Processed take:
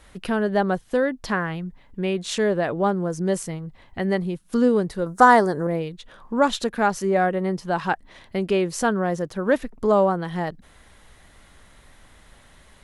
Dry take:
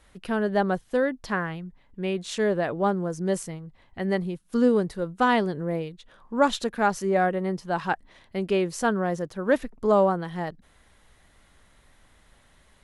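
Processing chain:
0:05.06–0:05.67: drawn EQ curve 190 Hz 0 dB, 780 Hz +9 dB, 1,800 Hz +7 dB, 2,700 Hz −10 dB, 5,800 Hz +12 dB
in parallel at +2 dB: downward compressor, threshold −33 dBFS, peak gain reduction 21.5 dB

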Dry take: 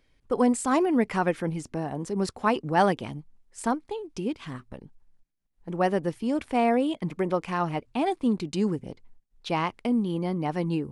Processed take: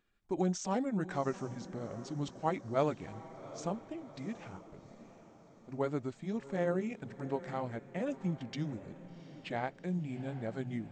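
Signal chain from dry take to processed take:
pitch shift by two crossfaded delay taps −5 semitones
low-shelf EQ 160 Hz −5.5 dB
feedback delay with all-pass diffusion 748 ms, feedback 52%, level −15 dB
level −7.5 dB

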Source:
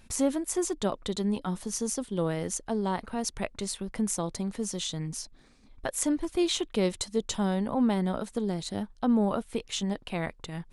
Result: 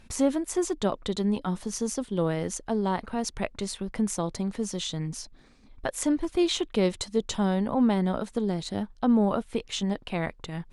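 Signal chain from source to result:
high-shelf EQ 8,800 Hz −11 dB
level +2.5 dB

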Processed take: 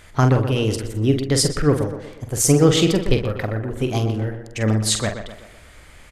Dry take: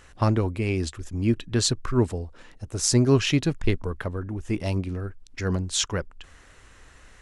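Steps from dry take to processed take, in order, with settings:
speed change +18%
double-tracking delay 46 ms −7.5 dB
tape delay 123 ms, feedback 51%, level −8 dB, low-pass 2,400 Hz
level +4.5 dB

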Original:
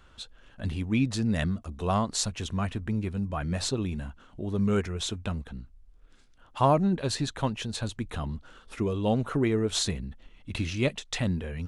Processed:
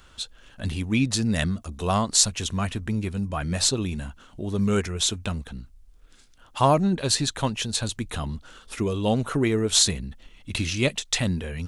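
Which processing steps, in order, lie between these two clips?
high-shelf EQ 3,500 Hz +11 dB
level +2.5 dB

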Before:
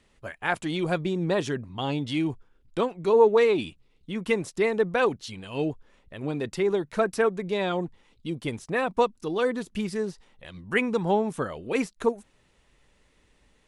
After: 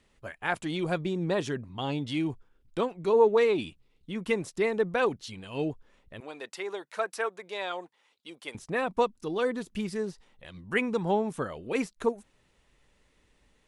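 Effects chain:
0:06.20–0:08.55: high-pass filter 650 Hz 12 dB per octave
level −3 dB

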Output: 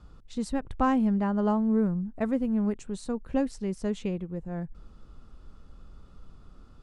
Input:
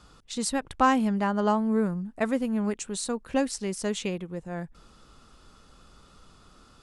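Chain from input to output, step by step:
spectral tilt −3 dB per octave
level −5.5 dB

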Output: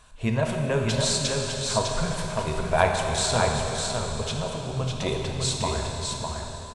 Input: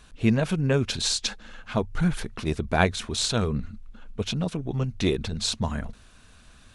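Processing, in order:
thirty-one-band graphic EQ 200 Hz −8 dB, 315 Hz −10 dB, 630 Hz +7 dB, 1,000 Hz +9 dB, 8,000 Hz +7 dB
on a send: single-tap delay 604 ms −4.5 dB
on the sum: dense smooth reverb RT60 3.8 s, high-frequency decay 0.85×, DRR 1 dB
level −3 dB

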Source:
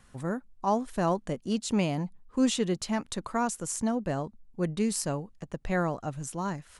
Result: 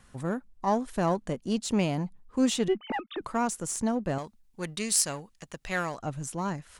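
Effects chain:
0:02.68–0:03.21: three sine waves on the formant tracks
in parallel at −5.5 dB: asymmetric clip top −34.5 dBFS
0:04.18–0:05.99: on the sum: tilt shelving filter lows −8.5 dB, about 1,100 Hz
level −2.5 dB

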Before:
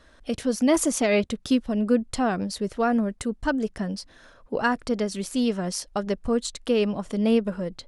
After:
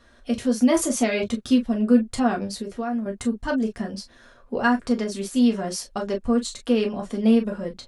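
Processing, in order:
0:02.51–0:03.06: downward compressor 6 to 1, threshold −28 dBFS, peak gain reduction 9 dB
convolution reverb, pre-delay 4 ms, DRR 1 dB
level −2 dB

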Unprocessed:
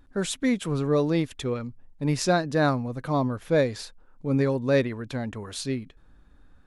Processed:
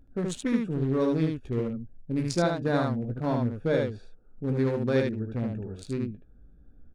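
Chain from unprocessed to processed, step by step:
adaptive Wiener filter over 41 samples
downward compressor 2 to 1, threshold −26 dBFS, peak gain reduction 5.5 dB
ambience of single reflections 17 ms −9 dB, 72 ms −3 dB
wrong playback speed 25 fps video run at 24 fps

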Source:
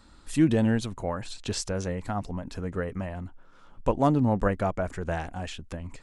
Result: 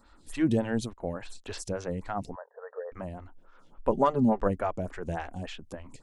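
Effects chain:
0:00.93–0:01.46: noise gate −38 dBFS, range −14 dB
0:02.35–0:02.92: linear-phase brick-wall band-pass 430–1,900 Hz
0:03.91–0:04.40: comb filter 5 ms, depth 81%
phaser with staggered stages 3.5 Hz

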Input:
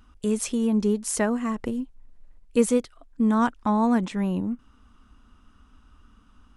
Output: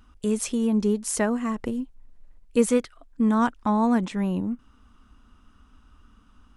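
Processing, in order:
0:02.64–0:03.29: dynamic equaliser 1,700 Hz, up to +8 dB, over −46 dBFS, Q 1.1

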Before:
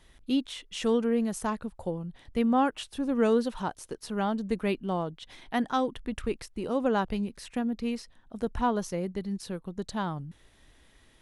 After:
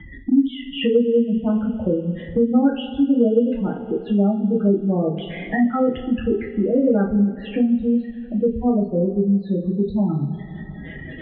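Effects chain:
high-pass filter 41 Hz 6 dB per octave
gate on every frequency bin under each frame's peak −10 dB strong
Butterworth low-pass 3,300 Hz 72 dB per octave
phaser with its sweep stopped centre 2,400 Hz, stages 4
coupled-rooms reverb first 0.32 s, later 1.9 s, from −18 dB, DRR −3.5 dB
multiband upward and downward compressor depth 70%
level +8 dB

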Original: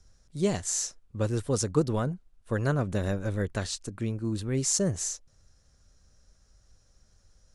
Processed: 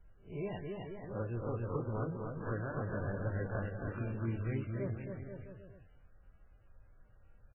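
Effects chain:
peak hold with a rise ahead of every peak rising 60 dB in 0.32 s
parametric band 260 Hz −4 dB 1.4 octaves
notch filter 1,800 Hz, Q 22
downward compressor 12 to 1, threshold −32 dBFS, peak gain reduction 13 dB
flanger 1.7 Hz, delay 5.2 ms, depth 6.5 ms, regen −53%
bouncing-ball delay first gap 270 ms, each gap 0.8×, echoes 5
level +2 dB
MP3 8 kbit/s 12,000 Hz

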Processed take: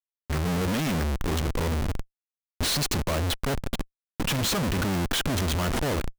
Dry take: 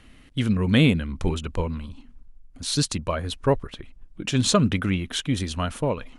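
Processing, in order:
turntable start at the beginning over 0.59 s
comparator with hysteresis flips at −35 dBFS
expander for the loud parts 1.5 to 1, over −37 dBFS

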